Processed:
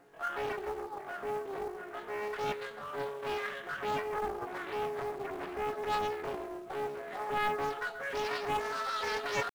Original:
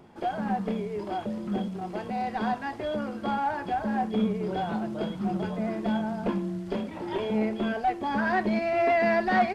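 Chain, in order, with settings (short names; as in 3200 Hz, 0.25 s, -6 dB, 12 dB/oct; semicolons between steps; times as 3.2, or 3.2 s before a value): Wiener smoothing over 15 samples; dynamic EQ 500 Hz, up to -7 dB, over -50 dBFS, Q 6.3; in parallel at +3 dB: limiter -21 dBFS, peak gain reduction 7.5 dB; on the sum: pitch shift +11.5 st; resonator 140 Hz, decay 0.44 s, harmonics all, mix 80%; on a send: dark delay 0.134 s, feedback 39%, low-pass 2200 Hz, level -9.5 dB; on the sum: companded quantiser 6-bit; Doppler distortion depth 0.81 ms; gain -6 dB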